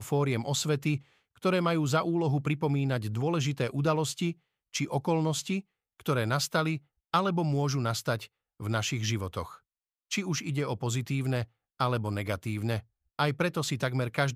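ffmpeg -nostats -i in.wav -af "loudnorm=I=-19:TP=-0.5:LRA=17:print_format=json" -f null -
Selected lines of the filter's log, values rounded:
"input_i" : "-30.3",
"input_tp" : "-12.0",
"input_lra" : "3.4",
"input_thresh" : "-40.5",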